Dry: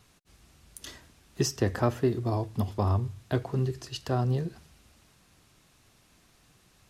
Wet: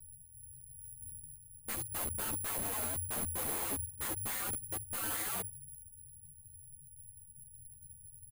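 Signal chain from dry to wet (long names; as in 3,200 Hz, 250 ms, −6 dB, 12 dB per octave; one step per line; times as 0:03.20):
mains hum 50 Hz, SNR 34 dB
low-pass that shuts in the quiet parts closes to 1,800 Hz, open at −24 dBFS
comb filter 6.5 ms, depth 97%
in parallel at −2 dB: downward compressor 6 to 1, threshold −39 dBFS, peak gain reduction 20 dB
on the sum: inverse Chebyshev band-stop filter 810–4,000 Hz, stop band 80 dB
speed change −17%
wrap-around overflow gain 34 dB
bad sample-rate conversion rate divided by 4×, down filtered, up zero stuff
string-ensemble chorus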